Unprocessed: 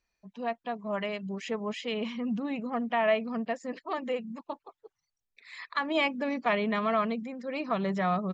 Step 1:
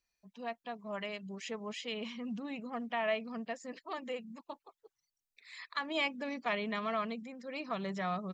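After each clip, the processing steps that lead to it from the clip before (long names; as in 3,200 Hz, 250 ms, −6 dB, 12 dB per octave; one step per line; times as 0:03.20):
high-shelf EQ 2,900 Hz +10 dB
level −8.5 dB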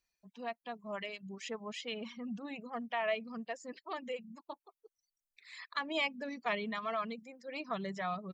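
reverb reduction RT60 1.4 s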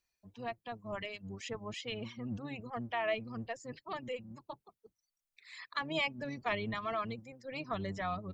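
sub-octave generator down 1 octave, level −3 dB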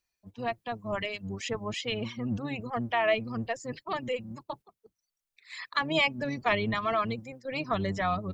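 noise gate −54 dBFS, range −7 dB
level +8 dB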